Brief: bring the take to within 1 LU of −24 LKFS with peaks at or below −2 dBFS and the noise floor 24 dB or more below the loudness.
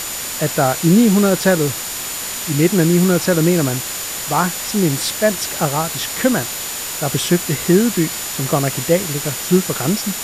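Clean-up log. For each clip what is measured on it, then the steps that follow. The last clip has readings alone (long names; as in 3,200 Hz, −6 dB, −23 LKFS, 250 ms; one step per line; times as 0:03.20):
interfering tone 7,000 Hz; level of the tone −30 dBFS; background noise floor −26 dBFS; target noise floor −41 dBFS; integrated loudness −17.0 LKFS; sample peak −2.0 dBFS; target loudness −24.0 LKFS
→ notch filter 7,000 Hz, Q 30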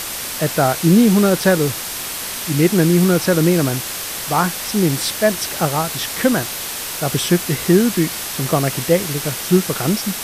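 interfering tone none found; background noise floor −27 dBFS; target noise floor −42 dBFS
→ broadband denoise 15 dB, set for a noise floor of −27 dBFS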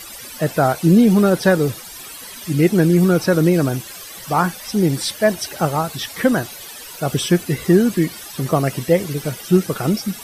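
background noise floor −36 dBFS; target noise floor −42 dBFS
→ broadband denoise 6 dB, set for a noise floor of −36 dBFS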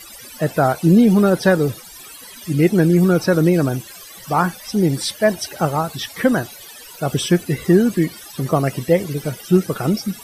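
background noise floor −39 dBFS; target noise floor −42 dBFS
→ broadband denoise 6 dB, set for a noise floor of −39 dBFS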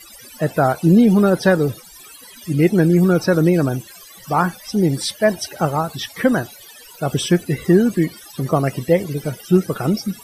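background noise floor −42 dBFS; integrated loudness −18.0 LKFS; sample peak −3.0 dBFS; target loudness −24.0 LKFS
→ level −6 dB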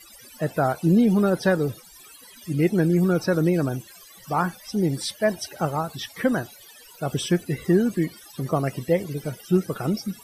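integrated loudness −24.0 LKFS; sample peak −9.0 dBFS; background noise floor −48 dBFS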